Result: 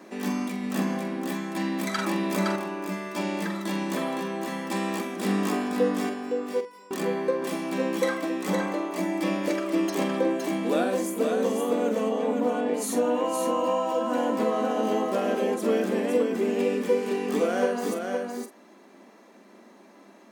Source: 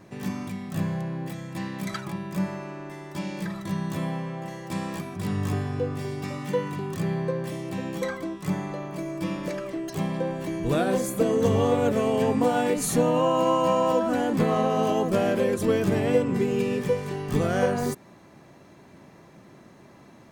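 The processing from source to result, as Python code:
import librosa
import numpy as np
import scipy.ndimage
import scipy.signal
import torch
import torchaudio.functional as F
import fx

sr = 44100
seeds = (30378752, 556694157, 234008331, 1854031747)

y = scipy.signal.sosfilt(scipy.signal.ellip(4, 1.0, 40, 210.0, 'highpass', fs=sr, output='sos'), x)
y = fx.rider(y, sr, range_db=5, speed_s=0.5)
y = fx.comb_fb(y, sr, f0_hz=500.0, decay_s=0.22, harmonics='all', damping=0.0, mix_pct=100, at=(6.09, 6.91))
y = fx.spacing_loss(y, sr, db_at_10k=20, at=(12.09, 12.74))
y = fx.doubler(y, sr, ms=45.0, db=-10.0)
y = y + 10.0 ** (-4.5 / 20.0) * np.pad(y, (int(514 * sr / 1000.0), 0))[:len(y)]
y = fx.env_flatten(y, sr, amount_pct=50, at=(1.98, 2.56))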